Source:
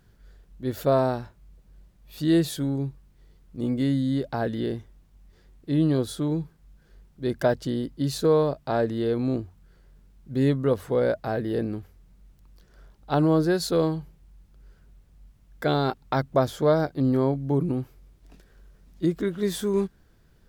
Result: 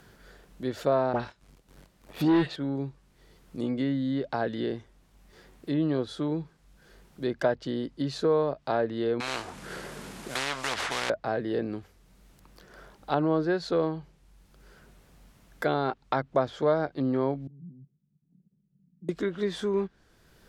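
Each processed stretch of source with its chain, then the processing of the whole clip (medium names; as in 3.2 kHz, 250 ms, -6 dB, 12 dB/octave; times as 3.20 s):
1.13–2.56 s: phase dispersion highs, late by 72 ms, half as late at 1.7 kHz + waveshaping leveller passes 2
9.20–11.10 s: CVSD coder 64 kbps + spectrum-flattening compressor 10:1
17.47–19.09 s: level held to a coarse grid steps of 19 dB + Butterworth band-pass 170 Hz, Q 2.5
whole clip: low-pass that closes with the level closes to 2.6 kHz, closed at -20 dBFS; bass shelf 220 Hz -11 dB; three bands compressed up and down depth 40%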